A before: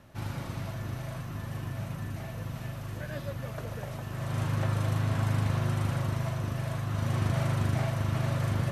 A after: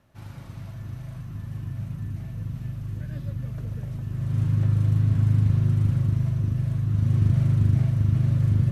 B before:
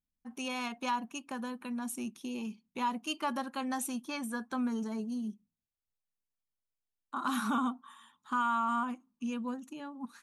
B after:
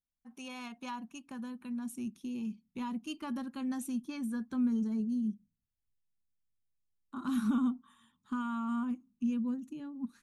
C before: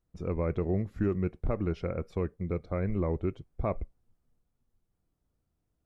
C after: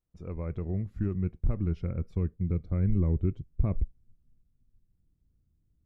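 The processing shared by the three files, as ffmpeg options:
ffmpeg -i in.wav -af "asubboost=boost=8.5:cutoff=250,volume=-8dB" out.wav

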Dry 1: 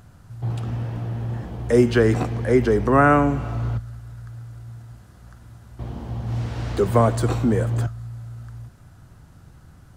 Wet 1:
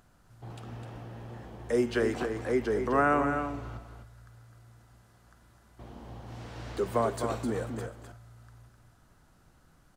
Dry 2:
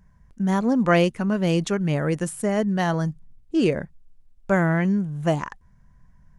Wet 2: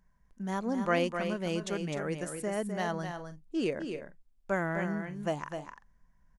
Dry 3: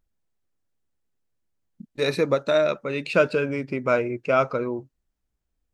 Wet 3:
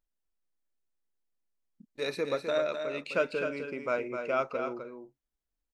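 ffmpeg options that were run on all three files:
ffmpeg -i in.wav -af "equalizer=frequency=100:width_type=o:width=1.7:gain=-12,aecho=1:1:256|301:0.447|0.112,volume=-8.5dB" out.wav

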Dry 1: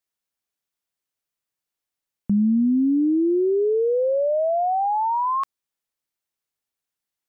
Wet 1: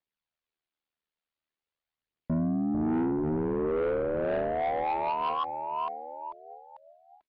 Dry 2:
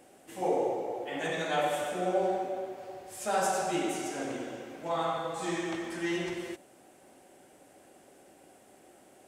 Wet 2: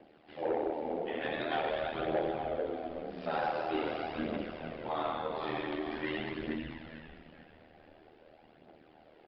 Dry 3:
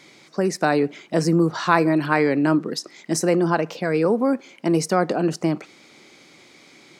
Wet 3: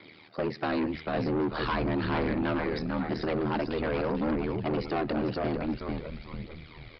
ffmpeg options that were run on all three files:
ffmpeg -i in.wav -filter_complex "[0:a]asplit=5[link_01][link_02][link_03][link_04][link_05];[link_02]adelay=443,afreqshift=-74,volume=-7dB[link_06];[link_03]adelay=886,afreqshift=-148,volume=-15.6dB[link_07];[link_04]adelay=1329,afreqshift=-222,volume=-24.3dB[link_08];[link_05]adelay=1772,afreqshift=-296,volume=-32.9dB[link_09];[link_01][link_06][link_07][link_08][link_09]amix=inputs=5:normalize=0,aphaser=in_gain=1:out_gain=1:delay=4.7:decay=0.42:speed=0.46:type=triangular,bandreject=frequency=60:width_type=h:width=6,bandreject=frequency=120:width_type=h:width=6,bandreject=frequency=180:width_type=h:width=6,acrossover=split=260|3000[link_10][link_11][link_12];[link_11]acompressor=threshold=-21dB:ratio=2[link_13];[link_10][link_13][link_12]amix=inputs=3:normalize=0,aeval=exprs='val(0)*sin(2*PI*39*n/s)':channel_layout=same,aresample=11025,asoftclip=type=tanh:threshold=-24dB,aresample=44100,lowpass=frequency=4300:width=0.5412,lowpass=frequency=4300:width=1.3066" out.wav

